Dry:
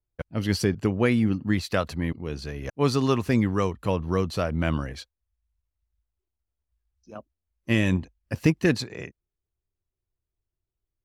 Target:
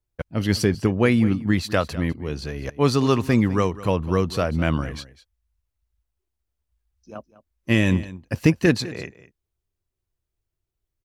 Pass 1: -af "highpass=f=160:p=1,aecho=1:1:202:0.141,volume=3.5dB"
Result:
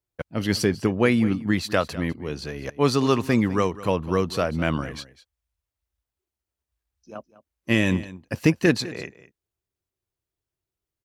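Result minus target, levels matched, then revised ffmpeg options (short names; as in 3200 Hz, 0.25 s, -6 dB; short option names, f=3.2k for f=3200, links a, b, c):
125 Hz band -3.0 dB
-af "aecho=1:1:202:0.141,volume=3.5dB"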